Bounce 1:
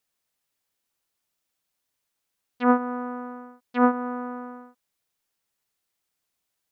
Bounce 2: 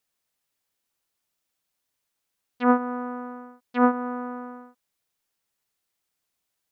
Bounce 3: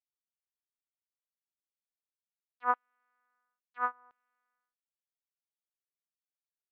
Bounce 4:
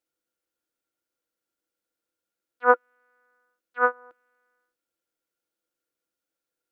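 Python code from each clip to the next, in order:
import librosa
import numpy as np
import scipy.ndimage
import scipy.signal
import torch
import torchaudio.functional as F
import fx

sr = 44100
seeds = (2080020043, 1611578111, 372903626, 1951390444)

y1 = x
y2 = fx.filter_lfo_highpass(y1, sr, shape='saw_down', hz=0.73, low_hz=950.0, high_hz=3000.0, q=1.5)
y2 = fx.upward_expand(y2, sr, threshold_db=-35.0, expansion=2.5)
y2 = y2 * librosa.db_to_amplitude(-5.0)
y3 = fx.small_body(y2, sr, hz=(330.0, 490.0, 1400.0), ring_ms=45, db=16)
y3 = y3 * librosa.db_to_amplitude(6.5)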